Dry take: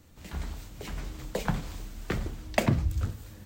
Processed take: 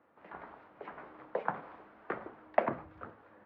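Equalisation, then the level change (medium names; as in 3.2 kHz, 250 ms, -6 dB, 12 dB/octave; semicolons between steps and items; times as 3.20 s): high-pass 510 Hz 12 dB/octave; four-pole ladder low-pass 1.8 kHz, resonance 20%; distance through air 66 m; +6.0 dB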